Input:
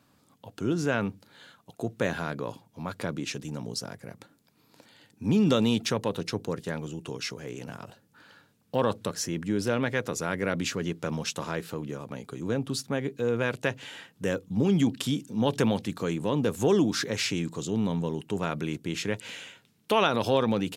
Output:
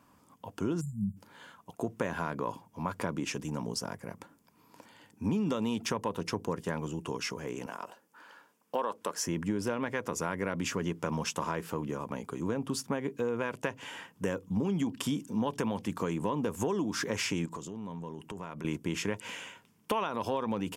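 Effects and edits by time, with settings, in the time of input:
0:00.81–0:01.17: time-frequency box erased 230–7,000 Hz
0:07.66–0:09.27: high-pass filter 360 Hz
0:17.45–0:18.65: downward compressor 8 to 1, threshold −38 dBFS
whole clip: thirty-one-band graphic EQ 125 Hz −9 dB, 1,000 Hz +10 dB, 4,000 Hz −11 dB; downward compressor 10 to 1, threshold −28 dBFS; low-shelf EQ 210 Hz +3 dB

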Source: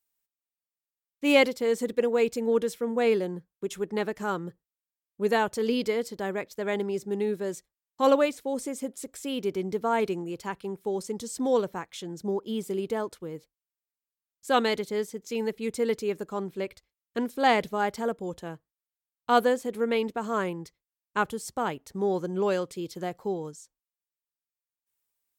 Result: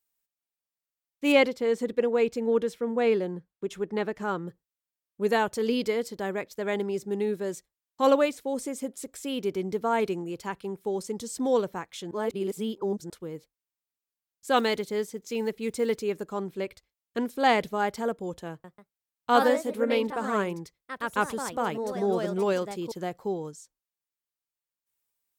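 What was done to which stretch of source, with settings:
0:01.32–0:04.48: high-shelf EQ 6,400 Hz −11.5 dB
0:12.11–0:13.10: reverse
0:14.56–0:16.03: one scale factor per block 7 bits
0:18.50–0:23.30: delay with pitch and tempo change per echo 141 ms, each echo +2 semitones, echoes 2, each echo −6 dB

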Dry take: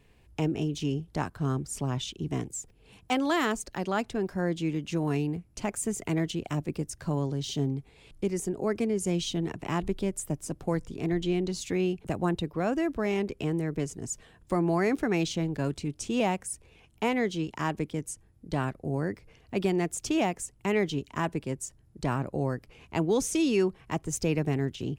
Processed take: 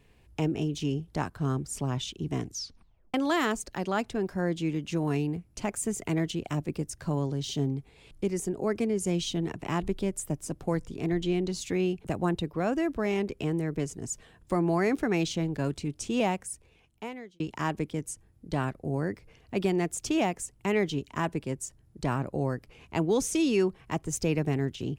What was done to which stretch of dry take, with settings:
0:02.41: tape stop 0.73 s
0:16.25–0:17.40: fade out

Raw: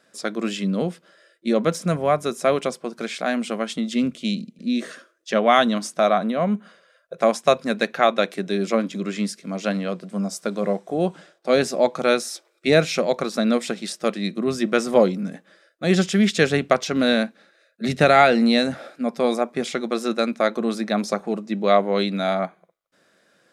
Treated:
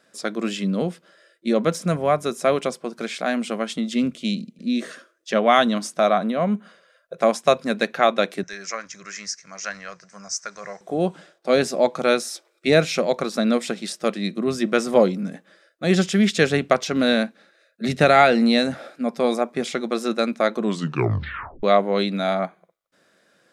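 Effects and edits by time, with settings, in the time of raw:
0:08.43–0:10.81: drawn EQ curve 110 Hz 0 dB, 230 Hz −26 dB, 1,800 Hz +4 dB, 3,500 Hz −12 dB, 6,000 Hz +12 dB, 11,000 Hz −20 dB
0:20.60: tape stop 1.03 s

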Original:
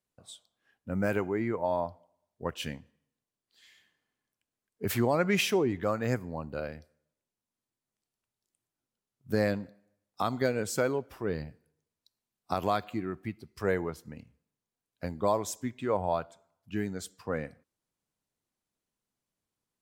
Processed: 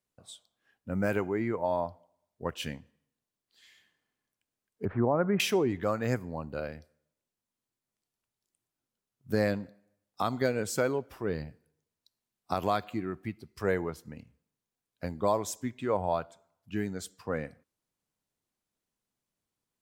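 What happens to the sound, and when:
0:04.85–0:05.40: low-pass filter 1,400 Hz 24 dB per octave

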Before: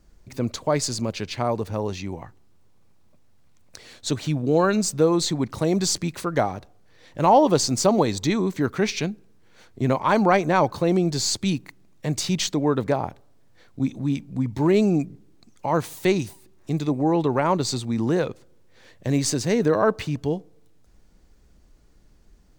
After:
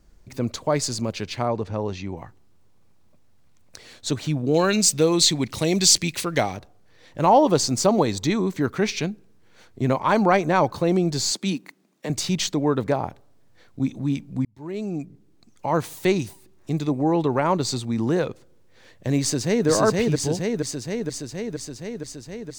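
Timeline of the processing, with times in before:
0:01.45–0:02.17: high-frequency loss of the air 78 metres
0:04.54–0:06.57: high shelf with overshoot 1,800 Hz +8 dB, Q 1.5
0:11.31–0:12.10: Butterworth high-pass 180 Hz
0:14.45–0:15.70: fade in
0:19.21–0:19.68: delay throw 470 ms, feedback 75%, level −1.5 dB

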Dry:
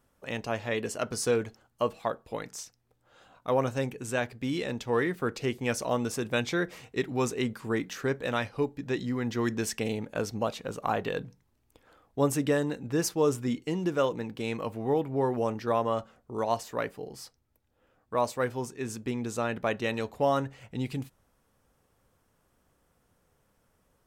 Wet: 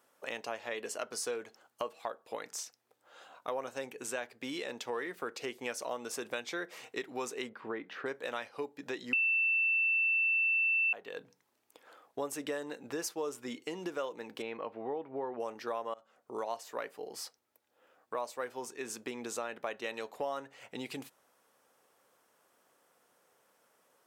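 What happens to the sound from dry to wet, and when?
0:07.49–0:08.06: high-frequency loss of the air 400 metres
0:09.13–0:10.93: beep over 2,670 Hz −8 dBFS
0:14.42–0:15.40: high-frequency loss of the air 340 metres
0:15.94–0:16.40: fade in, from −22.5 dB
whole clip: high-pass filter 430 Hz 12 dB per octave; downward compressor 3 to 1, threshold −41 dBFS; level +3.5 dB

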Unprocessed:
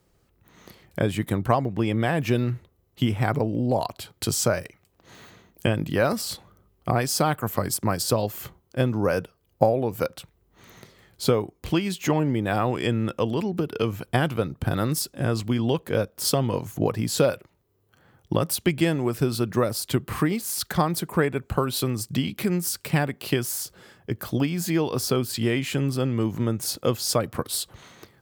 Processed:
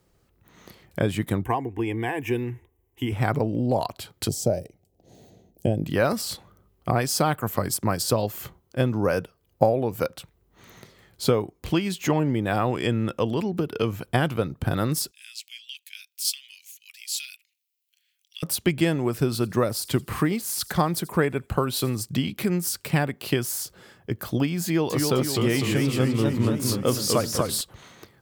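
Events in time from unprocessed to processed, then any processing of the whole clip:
0:01.44–0:03.12: phaser with its sweep stopped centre 880 Hz, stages 8
0:04.28–0:05.84: drawn EQ curve 750 Hz 0 dB, 1,100 Hz −25 dB, 5,800 Hz −6 dB
0:15.11–0:18.43: elliptic high-pass filter 2,400 Hz, stop band 70 dB
0:19.28–0:21.99: delay with a high-pass on its return 84 ms, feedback 39%, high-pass 5,200 Hz, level −17 dB
0:24.65–0:27.61: feedback echo with a swinging delay time 253 ms, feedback 54%, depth 177 cents, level −4 dB

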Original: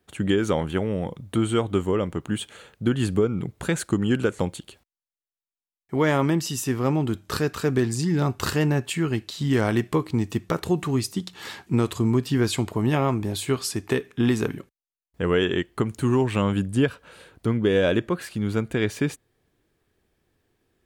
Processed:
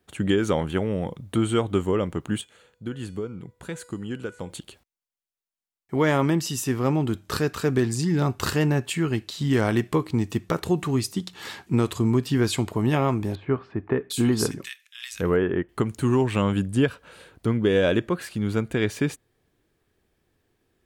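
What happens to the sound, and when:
0:02.41–0:04.50: tuned comb filter 490 Hz, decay 0.64 s, mix 70%
0:13.35–0:15.69: multiband delay without the direct sound lows, highs 750 ms, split 2,000 Hz

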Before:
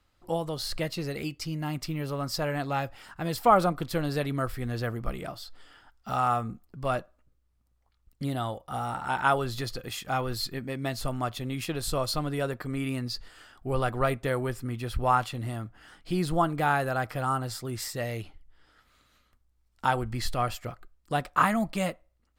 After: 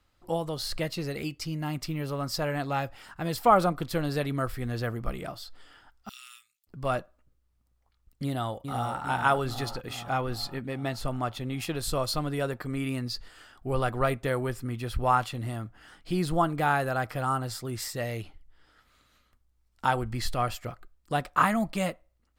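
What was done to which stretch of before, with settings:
0:06.09–0:06.67: inverse Chebyshev high-pass filter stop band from 800 Hz, stop band 60 dB
0:08.24–0:09.00: delay throw 400 ms, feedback 65%, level −6.5 dB
0:09.73–0:11.60: high-shelf EQ 5,700 Hz −6 dB

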